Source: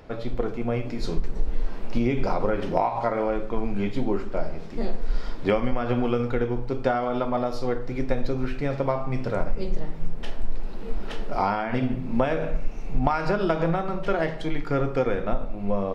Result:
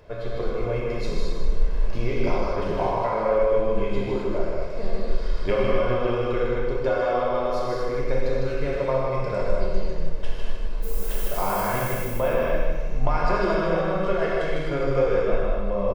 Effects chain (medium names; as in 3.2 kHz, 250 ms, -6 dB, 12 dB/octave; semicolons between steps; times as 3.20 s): comb 1.9 ms, depth 45%; 2.39–2.79 s: compressor with a negative ratio -27 dBFS; 10.82–11.94 s: added noise violet -37 dBFS; feedback delay 154 ms, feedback 42%, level -6 dB; gated-style reverb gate 290 ms flat, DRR -4 dB; trim -5 dB